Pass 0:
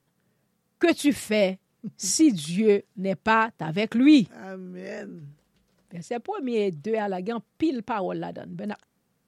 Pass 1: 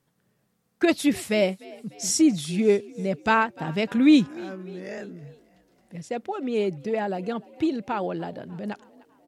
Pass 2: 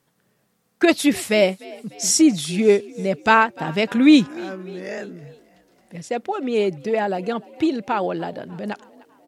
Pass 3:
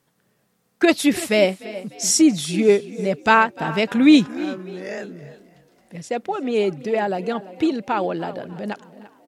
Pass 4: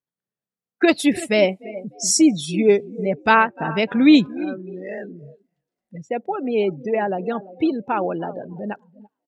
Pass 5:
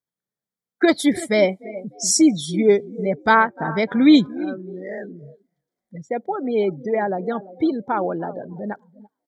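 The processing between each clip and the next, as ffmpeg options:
-filter_complex "[0:a]asplit=5[a][b][c][d][e];[b]adelay=298,afreqshift=44,volume=-22dB[f];[c]adelay=596,afreqshift=88,volume=-27.4dB[g];[d]adelay=894,afreqshift=132,volume=-32.7dB[h];[e]adelay=1192,afreqshift=176,volume=-38.1dB[i];[a][f][g][h][i]amix=inputs=5:normalize=0"
-af "lowshelf=f=210:g=-7.5,volume=6.5dB"
-filter_complex "[0:a]asplit=2[a][b];[b]adelay=338.2,volume=-16dB,highshelf=f=4k:g=-7.61[c];[a][c]amix=inputs=2:normalize=0"
-af "afftdn=nr=28:nf=-32"
-af "asuperstop=centerf=2700:order=12:qfactor=4.2"

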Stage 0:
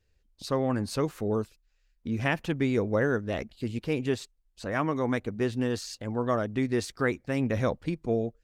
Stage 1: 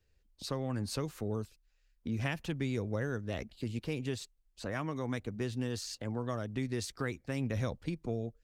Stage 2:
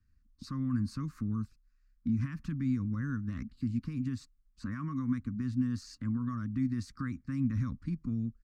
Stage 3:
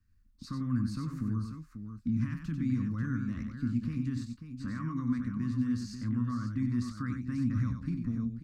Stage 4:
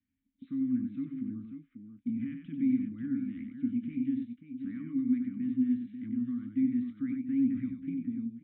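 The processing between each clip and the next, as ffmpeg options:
-filter_complex "[0:a]acrossover=split=150|3000[a][b][c];[b]acompressor=threshold=-35dB:ratio=3[d];[a][d][c]amix=inputs=3:normalize=0,volume=-2dB"
-af "highshelf=f=9.1k:g=12,alimiter=level_in=3.5dB:limit=-24dB:level=0:latency=1:release=38,volume=-3.5dB,firequalizer=gain_entry='entry(150,0);entry(260,5);entry(390,-24);entry(780,-30);entry(1100,-1);entry(3200,-22);entry(4500,-13);entry(12000,-27)':delay=0.05:min_phase=1,volume=4dB"
-filter_complex "[0:a]asplit=2[a][b];[b]adelay=25,volume=-12dB[c];[a][c]amix=inputs=2:normalize=0,aecho=1:1:93|540:0.473|0.355"
-filter_complex "[0:a]aresample=8000,aresample=44100,asplit=3[a][b][c];[a]bandpass=f=270:t=q:w=8,volume=0dB[d];[b]bandpass=f=2.29k:t=q:w=8,volume=-6dB[e];[c]bandpass=f=3.01k:t=q:w=8,volume=-9dB[f];[d][e][f]amix=inputs=3:normalize=0,volume=7dB"

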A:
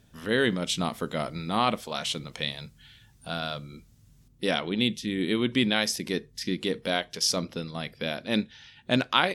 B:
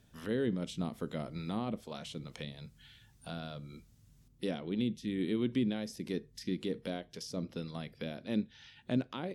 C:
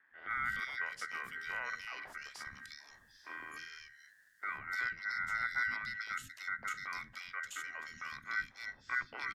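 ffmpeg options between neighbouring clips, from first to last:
-filter_complex "[0:a]acrossover=split=500[a][b];[b]acompressor=threshold=-40dB:ratio=6[c];[a][c]amix=inputs=2:normalize=0,volume=-5dB"
-filter_complex "[0:a]aeval=exprs='val(0)*sin(2*PI*2000*n/s)':c=same,acrossover=split=530|2600[a][b][c];[a]adelay=110[d];[c]adelay=300[e];[d][b][e]amix=inputs=3:normalize=0,afreqshift=-270,volume=1dB"

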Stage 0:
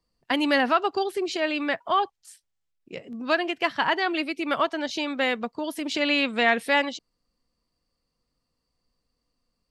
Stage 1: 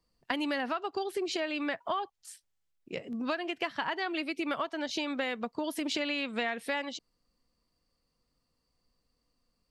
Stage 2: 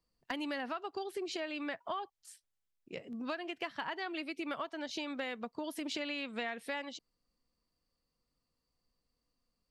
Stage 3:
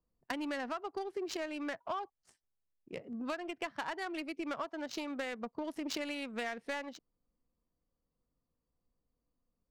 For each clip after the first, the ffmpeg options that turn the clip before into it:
-af "acompressor=threshold=-29dB:ratio=10"
-af "asoftclip=type=hard:threshold=-20dB,volume=-6dB"
-af "aexciter=amount=4.5:drive=3.7:freq=5k,adynamicsmooth=sensitivity=7.5:basefreq=1.2k,volume=1dB"

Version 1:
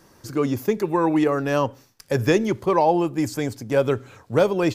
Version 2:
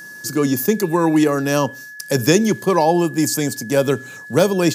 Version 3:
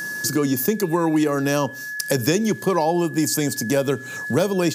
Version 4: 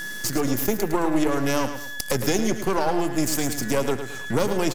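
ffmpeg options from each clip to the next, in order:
-af "highpass=f=160:w=0.5412,highpass=f=160:w=1.3066,aeval=exprs='val(0)+0.0141*sin(2*PI*1700*n/s)':c=same,bass=f=250:g=9,treble=f=4k:g=15,volume=2dB"
-af "acompressor=threshold=-30dB:ratio=2.5,volume=7.5dB"
-filter_complex "[0:a]aeval=exprs='if(lt(val(0),0),0.251*val(0),val(0))':c=same,asplit=2[a][b];[b]aecho=0:1:108|216|324|432:0.335|0.121|0.0434|0.0156[c];[a][c]amix=inputs=2:normalize=0"

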